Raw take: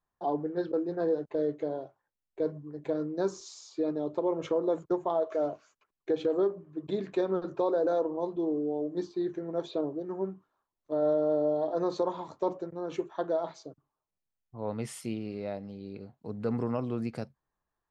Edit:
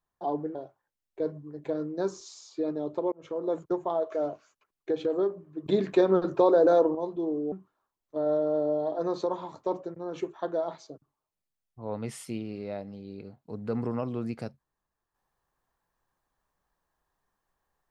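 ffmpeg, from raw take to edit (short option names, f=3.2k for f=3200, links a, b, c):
-filter_complex "[0:a]asplit=6[a][b][c][d][e][f];[a]atrim=end=0.552[g];[b]atrim=start=1.748:end=4.32,asetpts=PTS-STARTPTS,afade=t=out:st=2.568:d=0.004:c=hsin[h];[c]atrim=start=4.32:end=6.862,asetpts=PTS-STARTPTS,afade=t=in:d=0.42[i];[d]atrim=start=6.858:end=8.152,asetpts=PTS-STARTPTS,volume=7dB[j];[e]atrim=start=8.148:end=8.722[k];[f]atrim=start=10.278[l];[h][i]concat=n=2:v=0:a=1[m];[g][m]acrossfade=d=0.004:c1=hsin:c2=hsin[n];[n][j]acrossfade=d=0.004:c1=hsin:c2=hsin[o];[o][k]acrossfade=d=0.004:c1=hsin:c2=hsin[p];[p][l]acrossfade=d=0.004:c1=hsin:c2=hsin"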